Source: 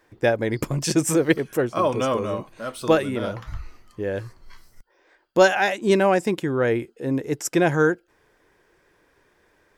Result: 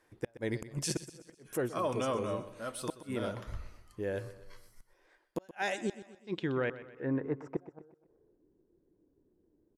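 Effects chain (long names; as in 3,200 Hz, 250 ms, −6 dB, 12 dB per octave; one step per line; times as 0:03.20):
low-pass filter sweep 11,000 Hz → 300 Hz, 0:05.53–0:08.45
gate with flip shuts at −10 dBFS, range −39 dB
brickwall limiter −15 dBFS, peak gain reduction 6 dB
repeating echo 125 ms, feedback 47%, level −15 dB
level −8.5 dB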